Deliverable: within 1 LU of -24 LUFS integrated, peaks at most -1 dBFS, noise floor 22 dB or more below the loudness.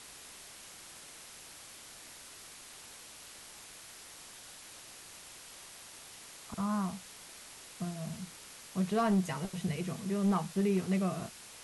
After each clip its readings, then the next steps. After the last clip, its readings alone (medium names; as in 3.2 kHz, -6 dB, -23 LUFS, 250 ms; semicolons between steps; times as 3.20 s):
clipped samples 0.3%; clipping level -23.0 dBFS; noise floor -52 dBFS; noise floor target -56 dBFS; loudness -34.0 LUFS; peak level -23.0 dBFS; loudness target -24.0 LUFS
-> clip repair -23 dBFS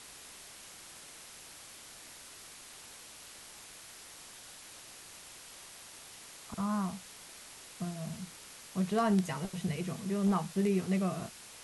clipped samples 0.0%; noise floor -52 dBFS; noise floor target -56 dBFS
-> noise reduction 6 dB, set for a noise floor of -52 dBFS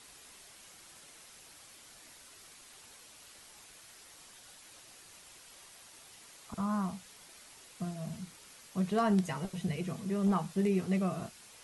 noise floor -56 dBFS; loudness -34.0 LUFS; peak level -16.5 dBFS; loudness target -24.0 LUFS
-> trim +10 dB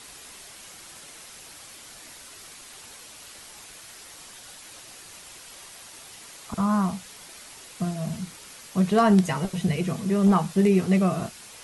loudness -24.0 LUFS; peak level -6.5 dBFS; noise floor -46 dBFS